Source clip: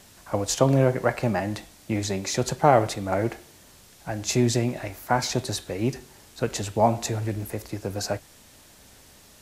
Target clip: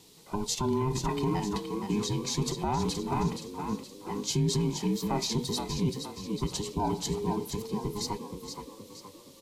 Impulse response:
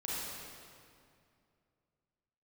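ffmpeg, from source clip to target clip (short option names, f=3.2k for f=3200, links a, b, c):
-filter_complex "[0:a]afftfilt=real='real(if(between(b,1,1008),(2*floor((b-1)/24)+1)*24-b,b),0)':imag='imag(if(between(b,1,1008),(2*floor((b-1)/24)+1)*24-b,b),0)*if(between(b,1,1008),-1,1)':win_size=2048:overlap=0.75,equalizer=f=160:t=o:w=0.67:g=10,equalizer=f=630:t=o:w=0.67:g=-4,equalizer=f=1.6k:t=o:w=0.67:g=-12,equalizer=f=4k:t=o:w=0.67:g=6,asplit=2[a][b];[b]asplit=5[c][d][e][f][g];[c]adelay=471,afreqshift=40,volume=-7.5dB[h];[d]adelay=942,afreqshift=80,volume=-14.4dB[i];[e]adelay=1413,afreqshift=120,volume=-21.4dB[j];[f]adelay=1884,afreqshift=160,volume=-28.3dB[k];[g]adelay=2355,afreqshift=200,volume=-35.2dB[l];[h][i][j][k][l]amix=inputs=5:normalize=0[m];[a][m]amix=inputs=2:normalize=0,alimiter=limit=-14dB:level=0:latency=1:release=14,volume=-5.5dB"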